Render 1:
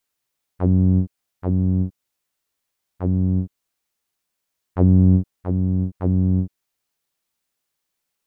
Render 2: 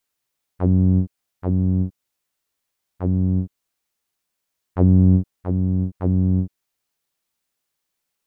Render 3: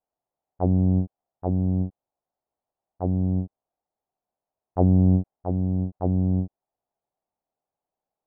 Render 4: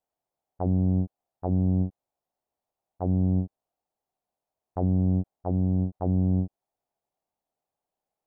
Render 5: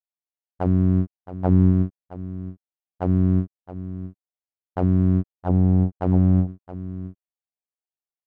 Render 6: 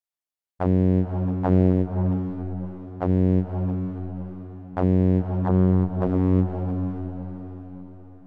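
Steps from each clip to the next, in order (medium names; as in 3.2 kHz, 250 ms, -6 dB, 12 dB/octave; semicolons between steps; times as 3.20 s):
no audible change
resonant low-pass 740 Hz, resonance Q 3.7; trim -4.5 dB
peak limiter -16 dBFS, peak gain reduction 9.5 dB
delay 669 ms -9.5 dB; power-law waveshaper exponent 1.4; trim +7 dB
echo that smears into a reverb 545 ms, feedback 44%, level -5.5 dB; loudspeaker Doppler distortion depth 0.84 ms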